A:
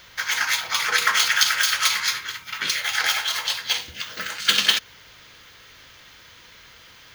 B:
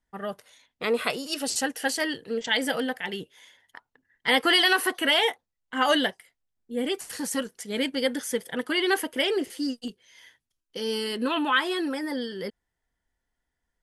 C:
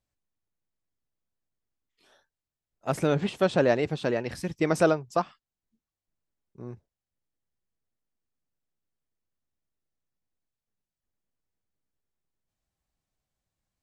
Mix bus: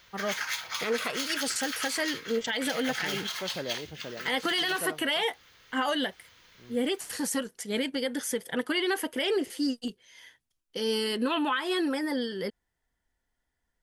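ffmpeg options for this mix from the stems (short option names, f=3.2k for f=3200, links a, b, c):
-filter_complex "[0:a]alimiter=limit=-7dB:level=0:latency=1:release=393,volume=-10dB[a];[1:a]volume=0.5dB[b];[2:a]volume=-14dB[c];[a][b][c]amix=inputs=3:normalize=0,alimiter=limit=-19dB:level=0:latency=1:release=150"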